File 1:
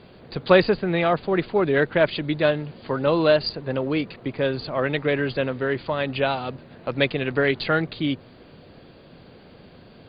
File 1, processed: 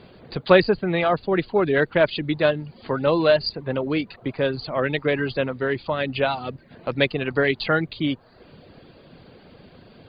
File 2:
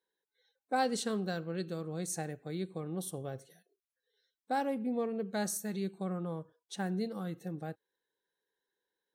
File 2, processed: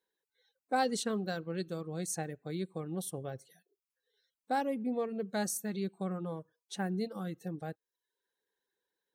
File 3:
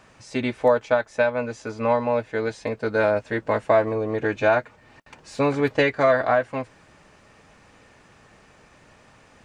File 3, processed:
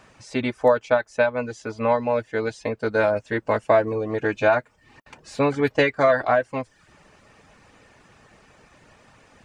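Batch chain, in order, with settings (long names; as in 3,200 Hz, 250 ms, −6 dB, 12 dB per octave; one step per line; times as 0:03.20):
reverb reduction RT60 0.52 s
level +1 dB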